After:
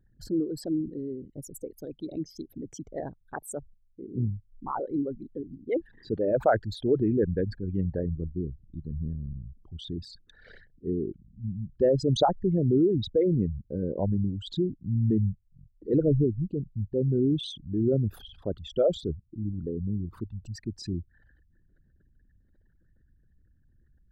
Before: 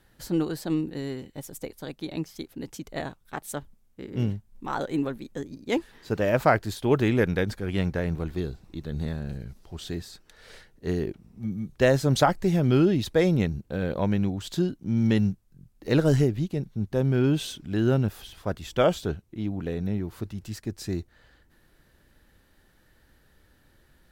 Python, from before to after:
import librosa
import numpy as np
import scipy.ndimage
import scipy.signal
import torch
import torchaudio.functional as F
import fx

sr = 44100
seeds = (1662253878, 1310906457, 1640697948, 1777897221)

y = fx.envelope_sharpen(x, sr, power=3.0)
y = y * 10.0 ** (-2.0 / 20.0)